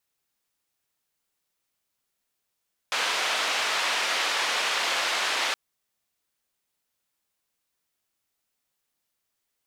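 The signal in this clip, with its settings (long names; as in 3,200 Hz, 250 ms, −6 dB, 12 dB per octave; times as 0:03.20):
band-limited noise 610–3,500 Hz, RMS −26.5 dBFS 2.62 s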